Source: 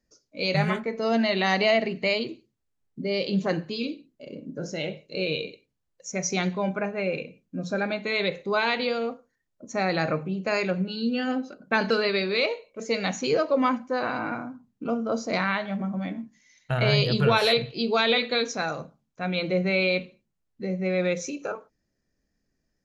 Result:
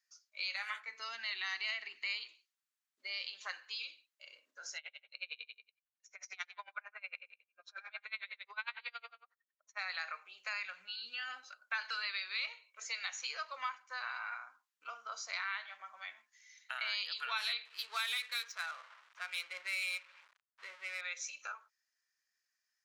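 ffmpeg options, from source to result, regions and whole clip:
ffmpeg -i in.wav -filter_complex "[0:a]asettb=1/sr,asplit=3[link_01][link_02][link_03];[link_01]atrim=end=0.884[link_04];[link_02]atrim=start=0.88:end=2.23,asetpts=PTS-STARTPTS,afade=type=in:duration=0.004:curve=qsin,afade=type=out:start_time=1.346:duration=0.004:curve=qsin,lowshelf=frequency=420:width_type=q:width=3:gain=9.5,acompressor=threshold=-16dB:ratio=2:attack=3.2:release=140:knee=1:detection=peak[link_05];[link_03]atrim=start=2.226[link_06];[link_04][link_05]acrossfade=duration=0.004:curve1=hsin:curve2=qsin[link_07];[link_07][link_06]acrossfade=duration=0.004:curve1=qsin:curve2=hsin,asettb=1/sr,asplit=3[link_08][link_09][link_10];[link_08]atrim=end=4.784[link_11];[link_09]atrim=start=4.78:end=9.79,asetpts=PTS-STARTPTS,afade=type=in:duration=0.004:curve=qsin,afade=type=out:start_time=5.006:duration=0.004:curve=qsin,lowpass=3300,aecho=1:1:152:0.251,atrim=end_sample=220941,aeval=exprs='val(0)*pow(10,-33*(0.5-0.5*cos(2*PI*11*n/s))/20)':channel_layout=same[link_12];[link_10]atrim=start=9.786[link_13];[link_11][link_12]acrossfade=duration=0.004:curve1=hsin:curve2=qsin[link_14];[link_14][link_13]acrossfade=duration=0.004:curve1=qsin:curve2=hsin,asettb=1/sr,asplit=3[link_15][link_16][link_17];[link_15]atrim=end=10.534[link_18];[link_16]atrim=start=10.53:end=11.44,asetpts=PTS-STARTPTS,afade=type=in:duration=0.004:curve=qsin,afade=type=out:start_time=0.906:duration=0.004:curve=qsin,acrossover=split=4800[link_19][link_20];[link_20]acompressor=threshold=-56dB:ratio=4:attack=1:release=60[link_21];[link_19][link_21]amix=inputs=2:normalize=0,lowshelf=frequency=260:width_type=q:width=1.5:gain=13.5[link_22];[link_17]atrim=start=11.436[link_23];[link_18][link_22]acrossfade=duration=0.004:curve1=hsin:curve2=qsin[link_24];[link_24][link_23]acrossfade=duration=0.004:curve1=qsin:curve2=hsin,asettb=1/sr,asplit=3[link_25][link_26][link_27];[link_25]atrim=end=17.654[link_28];[link_26]atrim=start=17.65:end=21.01,asetpts=PTS-STARTPTS,afade=type=in:duration=0.004:curve=qsin,afade=type=out:start_time=3.356:duration=0.004:curve=qsin,aeval=exprs='val(0)+0.5*0.0119*sgn(val(0))':channel_layout=same,bandreject=frequency=770:width=9,adynamicsmooth=sensitivity=5:basefreq=1700[link_29];[link_27]atrim=start=21.006[link_30];[link_28][link_29]acrossfade=duration=0.004:curve1=hsin:curve2=qsin[link_31];[link_31][link_30]acrossfade=duration=0.004:curve1=qsin:curve2=hsin,highpass=frequency=1200:width=0.5412,highpass=frequency=1200:width=1.3066,acompressor=threshold=-41dB:ratio=2,volume=-1dB" out.wav

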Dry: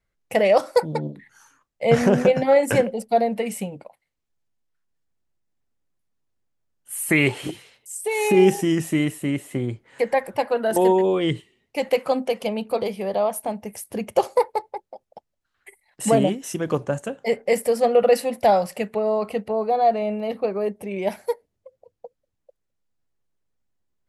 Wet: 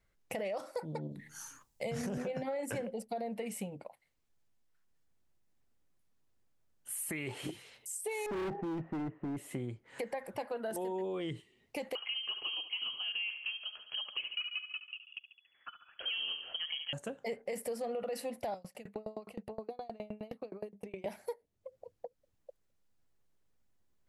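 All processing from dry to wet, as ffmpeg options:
ffmpeg -i in.wav -filter_complex "[0:a]asettb=1/sr,asplit=3[link_01][link_02][link_03];[link_01]atrim=end=1.114[link_04];[link_02]atrim=start=1.11:end=2.18,asetpts=PTS-STARTPTS,afade=type=in:duration=0.004:curve=qsin,afade=type=out:start_time=1.066:duration=0.004:curve=qsin,bass=frequency=250:gain=7,treble=frequency=4000:gain=11,bandreject=frequency=76.02:width_type=h:width=4,bandreject=frequency=152.04:width_type=h:width=4,bandreject=frequency=228.06:width_type=h:width=4,bandreject=frequency=304.08:width_type=h:width=4,bandreject=frequency=380.1:width_type=h:width=4,bandreject=frequency=456.12:width_type=h:width=4,bandreject=frequency=532.14:width_type=h:width=4,bandreject=frequency=608.16:width_type=h:width=4,bandreject=frequency=684.18:width_type=h:width=4,bandreject=frequency=760.2:width_type=h:width=4,bandreject=frequency=836.22:width_type=h:width=4,bandreject=frequency=912.24:width_type=h:width=4,bandreject=frequency=988.26:width_type=h:width=4[link_05];[link_03]atrim=start=2.176[link_06];[link_04][link_05]acrossfade=duration=0.004:curve1=hsin:curve2=qsin[link_07];[link_07][link_06]acrossfade=duration=0.004:curve1=qsin:curve2=hsin,asettb=1/sr,asplit=3[link_08][link_09][link_10];[link_08]atrim=end=8.264[link_11];[link_09]atrim=start=8.26:end=9.37,asetpts=PTS-STARTPTS,afade=type=in:duration=0.004:curve=qsin,afade=type=out:start_time=1.106:duration=0.004:curve=qsin,lowpass=frequency=1500:width=0.5412,lowpass=frequency=1500:width=1.3066,asoftclip=type=hard:threshold=-23dB[link_12];[link_10]atrim=start=9.366[link_13];[link_11][link_12]acrossfade=duration=0.004:curve1=hsin:curve2=qsin[link_14];[link_14][link_13]acrossfade=duration=0.004:curve1=qsin:curve2=hsin,asettb=1/sr,asplit=3[link_15][link_16][link_17];[link_15]atrim=end=11.954[link_18];[link_16]atrim=start=11.95:end=16.93,asetpts=PTS-STARTPTS,afade=type=in:duration=0.004:curve=qsin,afade=type=out:start_time=4.976:duration=0.004:curve=qsin,aecho=1:1:70|140|210|280|350:0.224|0.116|0.0605|0.0315|0.0164,atrim=end_sample=219618,lowpass=frequency=2900:width_type=q:width=0.5098,lowpass=frequency=2900:width_type=q:width=0.6013,lowpass=frequency=2900:width_type=q:width=0.9,lowpass=frequency=2900:width_type=q:width=2.563,afreqshift=-3400[link_19];[link_17]atrim=start=16.926[link_20];[link_18][link_19]acrossfade=duration=0.004:curve1=hsin:curve2=qsin[link_21];[link_21][link_20]acrossfade=duration=0.004:curve1=qsin:curve2=hsin,asettb=1/sr,asplit=3[link_22][link_23][link_24];[link_22]atrim=end=18.544[link_25];[link_23]atrim=start=18.54:end=21.06,asetpts=PTS-STARTPTS,afade=type=in:duration=0.004:curve=qsin,afade=type=out:start_time=2.516:duration=0.004:curve=qsin,bandreject=frequency=50:width_type=h:width=6,bandreject=frequency=100:width_type=h:width=6,bandreject=frequency=150:width_type=h:width=6,bandreject=frequency=200:width_type=h:width=6,acrossover=split=340|3000[link_26][link_27][link_28];[link_27]acompressor=threshold=-30dB:ratio=3:attack=3.2:release=140:knee=2.83:detection=peak[link_29];[link_26][link_29][link_28]amix=inputs=3:normalize=0,aeval=exprs='val(0)*pow(10,-30*if(lt(mod(9.6*n/s,1),2*abs(9.6)/1000),1-mod(9.6*n/s,1)/(2*abs(9.6)/1000),(mod(9.6*n/s,1)-2*abs(9.6)/1000)/(1-2*abs(9.6)/1000))/20)':channel_layout=same[link_30];[link_24]atrim=start=21.056[link_31];[link_25][link_30]acrossfade=duration=0.004:curve1=hsin:curve2=qsin[link_32];[link_32][link_31]acrossfade=duration=0.004:curve1=qsin:curve2=hsin,alimiter=limit=-15.5dB:level=0:latency=1:release=41,acompressor=threshold=-45dB:ratio=2.5,volume=1.5dB" out.wav

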